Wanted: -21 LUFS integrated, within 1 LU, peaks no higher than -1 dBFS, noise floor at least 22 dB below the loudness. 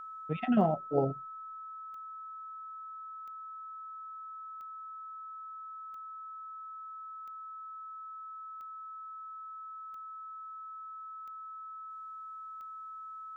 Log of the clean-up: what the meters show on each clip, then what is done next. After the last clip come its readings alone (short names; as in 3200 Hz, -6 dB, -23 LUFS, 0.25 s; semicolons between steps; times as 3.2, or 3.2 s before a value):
clicks 10; steady tone 1300 Hz; tone level -42 dBFS; loudness -39.5 LUFS; peak -13.5 dBFS; loudness target -21.0 LUFS
-> de-click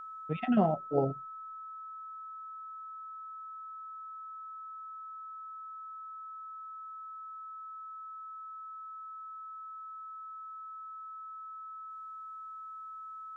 clicks 0; steady tone 1300 Hz; tone level -42 dBFS
-> notch 1300 Hz, Q 30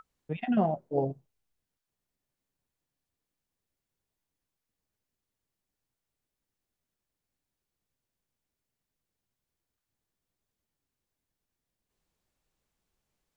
steady tone none; loudness -30.5 LUFS; peak -13.5 dBFS; loudness target -21.0 LUFS
-> gain +9.5 dB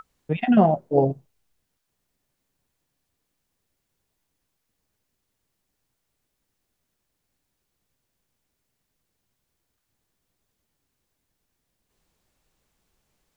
loudness -21.0 LUFS; peak -4.0 dBFS; noise floor -79 dBFS